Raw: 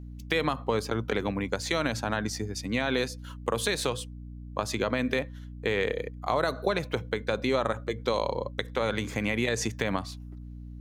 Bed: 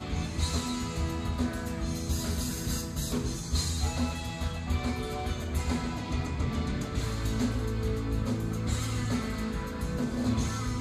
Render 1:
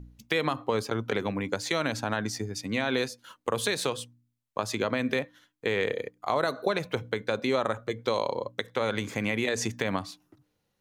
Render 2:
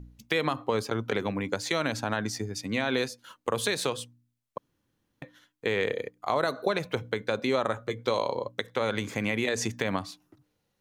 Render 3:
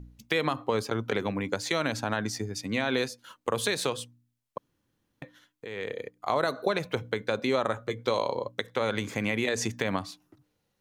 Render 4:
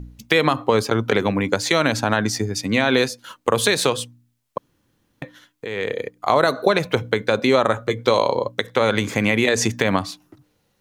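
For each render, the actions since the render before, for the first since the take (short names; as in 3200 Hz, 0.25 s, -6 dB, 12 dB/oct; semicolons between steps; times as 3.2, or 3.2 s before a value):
de-hum 60 Hz, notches 5
4.58–5.22 room tone; 7.71–8.48 doubler 16 ms -12.5 dB
5.65–6.26 fade in, from -14 dB
gain +10 dB; limiter -2 dBFS, peak gain reduction 1.5 dB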